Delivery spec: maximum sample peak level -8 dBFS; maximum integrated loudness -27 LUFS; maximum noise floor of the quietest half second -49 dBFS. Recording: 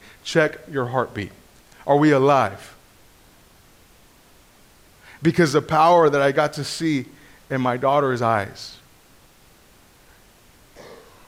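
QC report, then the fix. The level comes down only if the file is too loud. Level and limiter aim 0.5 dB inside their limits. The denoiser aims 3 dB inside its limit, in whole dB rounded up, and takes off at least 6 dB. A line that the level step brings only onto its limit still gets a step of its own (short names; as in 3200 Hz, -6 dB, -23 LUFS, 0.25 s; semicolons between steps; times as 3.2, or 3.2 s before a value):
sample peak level -5.0 dBFS: fail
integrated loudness -19.5 LUFS: fail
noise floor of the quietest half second -52 dBFS: OK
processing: gain -8 dB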